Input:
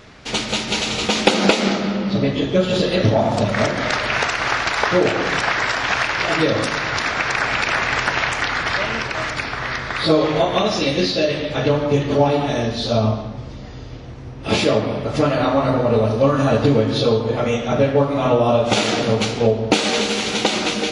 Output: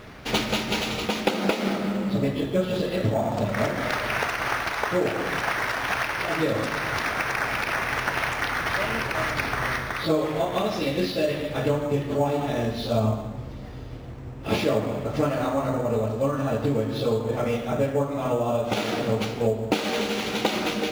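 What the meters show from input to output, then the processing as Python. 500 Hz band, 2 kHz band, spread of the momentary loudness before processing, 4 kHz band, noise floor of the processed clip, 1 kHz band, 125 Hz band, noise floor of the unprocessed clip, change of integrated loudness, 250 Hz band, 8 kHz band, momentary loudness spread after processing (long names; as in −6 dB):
−7.0 dB, −6.5 dB, 6 LU, −9.5 dB, −37 dBFS, −6.5 dB, −6.5 dB, −33 dBFS, −7.0 dB, −6.5 dB, −9.0 dB, 2 LU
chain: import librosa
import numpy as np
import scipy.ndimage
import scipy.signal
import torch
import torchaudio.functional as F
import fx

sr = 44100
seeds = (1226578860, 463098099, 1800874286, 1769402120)

p1 = fx.high_shelf(x, sr, hz=6200.0, db=-7.5)
p2 = fx.sample_hold(p1, sr, seeds[0], rate_hz=7500.0, jitter_pct=0)
p3 = p1 + (p2 * librosa.db_to_amplitude(-8.0))
p4 = fx.rider(p3, sr, range_db=10, speed_s=0.5)
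y = p4 * librosa.db_to_amplitude(-9.0)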